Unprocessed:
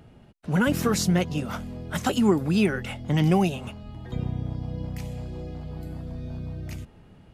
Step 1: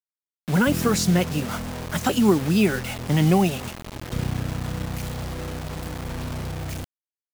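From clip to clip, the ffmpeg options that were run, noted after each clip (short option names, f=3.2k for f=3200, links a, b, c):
-af "acrusher=bits=5:mix=0:aa=0.000001,volume=2.5dB"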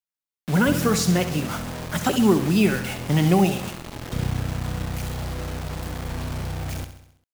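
-af "aecho=1:1:66|132|198|264|330|396:0.299|0.167|0.0936|0.0524|0.0294|0.0164"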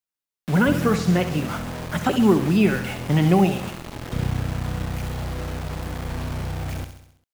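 -filter_complex "[0:a]acrossover=split=3200[a][b];[b]acompressor=threshold=-39dB:ratio=4:attack=1:release=60[c];[a][c]amix=inputs=2:normalize=0,volume=1dB"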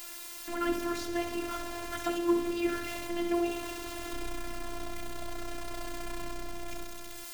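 -af "aeval=exprs='val(0)+0.5*0.0631*sgn(val(0))':c=same,afftfilt=real='hypot(re,im)*cos(PI*b)':imag='0':win_size=512:overlap=0.75,volume=-8dB"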